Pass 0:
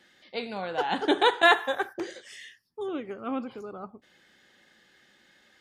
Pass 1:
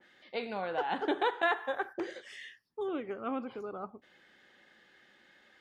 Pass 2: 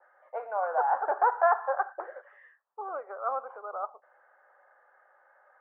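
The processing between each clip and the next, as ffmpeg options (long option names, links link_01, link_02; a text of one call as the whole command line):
ffmpeg -i in.wav -af "bass=frequency=250:gain=-5,treble=frequency=4000:gain=-10,acompressor=threshold=-32dB:ratio=2,adynamicequalizer=threshold=0.00562:dfrequency=2400:dqfactor=0.7:tfrequency=2400:tqfactor=0.7:attack=5:release=100:ratio=0.375:range=2:mode=cutabove:tftype=highshelf" out.wav
ffmpeg -i in.wav -af "asuperpass=centerf=890:order=8:qfactor=1,volume=8.5dB" out.wav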